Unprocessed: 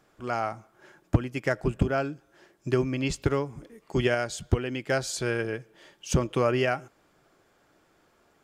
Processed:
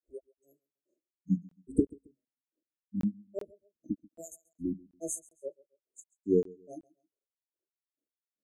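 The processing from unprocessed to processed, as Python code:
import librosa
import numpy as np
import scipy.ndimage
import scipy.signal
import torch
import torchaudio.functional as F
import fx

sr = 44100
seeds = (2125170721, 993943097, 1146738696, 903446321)

y = scipy.signal.sosfilt(scipy.signal.ellip(4, 1.0, 40, 9100.0, 'lowpass', fs=sr, output='sos'), x)
y = fx.low_shelf_res(y, sr, hz=200.0, db=-9.0, q=3.0)
y = fx.hum_notches(y, sr, base_hz=50, count=5)
y = fx.noise_reduce_blind(y, sr, reduce_db=28)
y = fx.rider(y, sr, range_db=5, speed_s=2.0)
y = fx.granulator(y, sr, seeds[0], grain_ms=209.0, per_s=2.4, spray_ms=100.0, spread_st=7)
y = fx.brickwall_bandstop(y, sr, low_hz=670.0, high_hz=6200.0)
y = fx.echo_feedback(y, sr, ms=135, feedback_pct=30, wet_db=-23.5)
y = fx.buffer_crackle(y, sr, first_s=0.35, period_s=0.38, block=1024, kind='zero')
y = y * 10.0 ** (3.0 / 20.0)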